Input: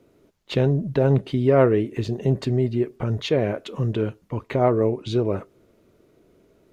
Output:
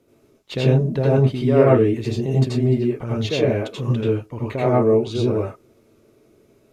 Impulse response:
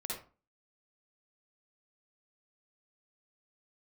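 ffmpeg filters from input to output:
-filter_complex "[0:a]highshelf=f=4.7k:g=6.5[a];[1:a]atrim=start_sample=2205,atrim=end_sample=3528,asetrate=27342,aresample=44100[b];[a][b]afir=irnorm=-1:irlink=0,volume=-1.5dB"

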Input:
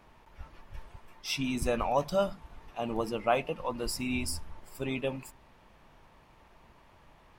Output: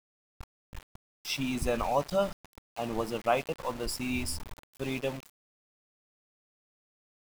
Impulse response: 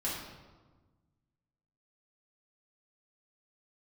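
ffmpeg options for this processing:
-af "aeval=exprs='val(0)*gte(abs(val(0)),0.0112)':c=same"

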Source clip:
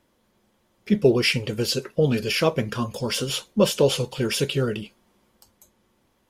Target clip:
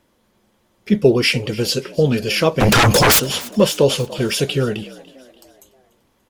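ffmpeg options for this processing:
-filter_complex "[0:a]asplit=3[a][b][c];[a]afade=t=out:st=2.6:d=0.02[d];[b]aeval=exprs='0.224*sin(PI/2*7.08*val(0)/0.224)':c=same,afade=t=in:st=2.6:d=0.02,afade=t=out:st=3.18:d=0.02[e];[c]afade=t=in:st=3.18:d=0.02[f];[d][e][f]amix=inputs=3:normalize=0,asplit=2[g][h];[h]asplit=4[i][j][k][l];[i]adelay=291,afreqshift=65,volume=-20dB[m];[j]adelay=582,afreqshift=130,volume=-26.2dB[n];[k]adelay=873,afreqshift=195,volume=-32.4dB[o];[l]adelay=1164,afreqshift=260,volume=-38.6dB[p];[m][n][o][p]amix=inputs=4:normalize=0[q];[g][q]amix=inputs=2:normalize=0,volume=4.5dB"

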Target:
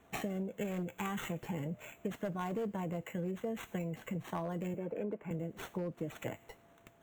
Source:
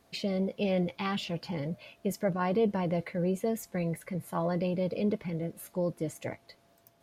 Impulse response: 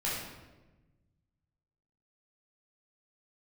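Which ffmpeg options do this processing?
-filter_complex "[0:a]acrossover=split=280|1800[a][b][c];[c]acrusher=samples=9:mix=1:aa=0.000001[d];[a][b][d]amix=inputs=3:normalize=0,asettb=1/sr,asplit=3[e][f][g];[e]atrim=end=4.744[h];[f]atrim=start=4.74:end=5.31,asetpts=PTS-STARTPTS,afade=t=in:d=0.004:c=qsin,afade=t=out:st=0.566:d=0.004:c=qsin,acrossover=split=240 2200:gain=0.251 1 0.126[i][j][k];[i][j][k]amix=inputs=3:normalize=0[l];[g]atrim=start=5.306[m];[h][l]acrossfade=d=0.004:c1=hsin:c2=qsin[n];[n][m]acrossfade=d=0.004:c1=qsin:c2=hsin,volume=22dB,asoftclip=hard,volume=-22dB,bandreject=f=550:w=12,asplit=2[o][p];[p]aderivative[q];[1:a]atrim=start_sample=2205[r];[q][r]afir=irnorm=-1:irlink=0,volume=-15.5dB[s];[o][s]amix=inputs=2:normalize=0,acompressor=threshold=-37dB:ratio=6,volume=2dB"

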